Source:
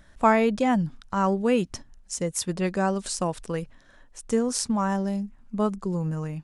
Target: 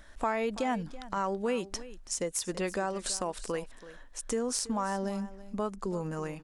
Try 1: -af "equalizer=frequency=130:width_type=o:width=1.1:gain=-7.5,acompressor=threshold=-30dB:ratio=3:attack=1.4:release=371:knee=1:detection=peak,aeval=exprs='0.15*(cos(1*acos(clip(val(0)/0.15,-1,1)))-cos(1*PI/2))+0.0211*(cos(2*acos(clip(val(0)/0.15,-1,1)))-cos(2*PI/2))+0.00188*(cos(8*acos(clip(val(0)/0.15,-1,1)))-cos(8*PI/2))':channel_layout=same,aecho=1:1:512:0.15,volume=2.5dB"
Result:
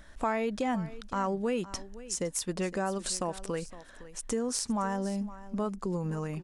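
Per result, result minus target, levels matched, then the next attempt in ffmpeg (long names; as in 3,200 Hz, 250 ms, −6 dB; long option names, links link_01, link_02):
echo 182 ms late; 125 Hz band +3.5 dB
-af "equalizer=frequency=130:width_type=o:width=1.1:gain=-7.5,acompressor=threshold=-30dB:ratio=3:attack=1.4:release=371:knee=1:detection=peak,aeval=exprs='0.15*(cos(1*acos(clip(val(0)/0.15,-1,1)))-cos(1*PI/2))+0.0211*(cos(2*acos(clip(val(0)/0.15,-1,1)))-cos(2*PI/2))+0.00188*(cos(8*acos(clip(val(0)/0.15,-1,1)))-cos(8*PI/2))':channel_layout=same,aecho=1:1:330:0.15,volume=2.5dB"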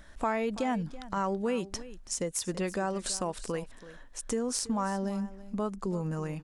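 125 Hz band +3.5 dB
-af "equalizer=frequency=130:width_type=o:width=1.1:gain=-17,acompressor=threshold=-30dB:ratio=3:attack=1.4:release=371:knee=1:detection=peak,aeval=exprs='0.15*(cos(1*acos(clip(val(0)/0.15,-1,1)))-cos(1*PI/2))+0.0211*(cos(2*acos(clip(val(0)/0.15,-1,1)))-cos(2*PI/2))+0.00188*(cos(8*acos(clip(val(0)/0.15,-1,1)))-cos(8*PI/2))':channel_layout=same,aecho=1:1:330:0.15,volume=2.5dB"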